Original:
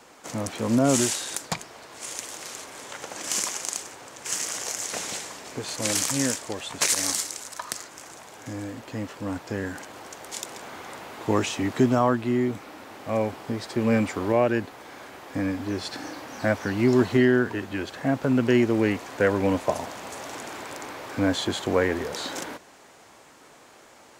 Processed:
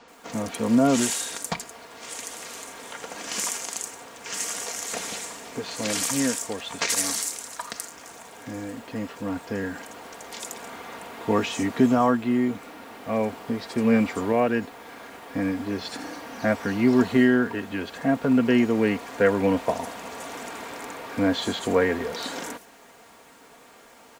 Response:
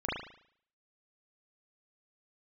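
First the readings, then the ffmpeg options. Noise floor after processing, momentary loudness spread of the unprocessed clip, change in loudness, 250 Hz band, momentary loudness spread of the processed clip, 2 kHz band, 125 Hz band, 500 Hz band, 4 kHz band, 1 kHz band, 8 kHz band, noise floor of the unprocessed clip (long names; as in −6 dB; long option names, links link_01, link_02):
−51 dBFS, 17 LU, +0.5 dB, +2.0 dB, 17 LU, +0.5 dB, −3.5 dB, 0.0 dB, −0.5 dB, +1.0 dB, −1.5 dB, −52 dBFS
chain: -filter_complex "[0:a]aecho=1:1:4.3:0.45,acrusher=bits=8:mix=0:aa=0.5,acrossover=split=5800[link_01][link_02];[link_02]adelay=80[link_03];[link_01][link_03]amix=inputs=2:normalize=0"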